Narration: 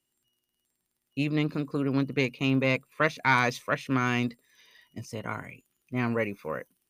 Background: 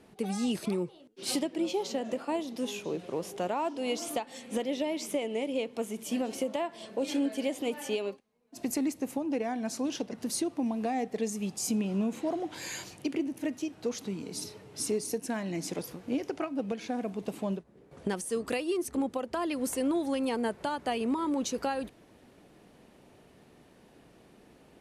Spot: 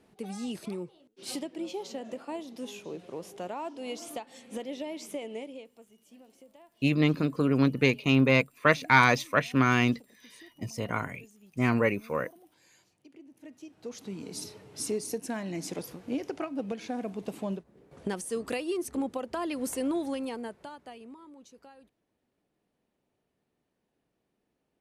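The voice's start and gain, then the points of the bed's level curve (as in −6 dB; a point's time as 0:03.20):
5.65 s, +3.0 dB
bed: 0:05.37 −5.5 dB
0:05.87 −23.5 dB
0:13.06 −23.5 dB
0:14.23 −1 dB
0:20.03 −1 dB
0:21.35 −22 dB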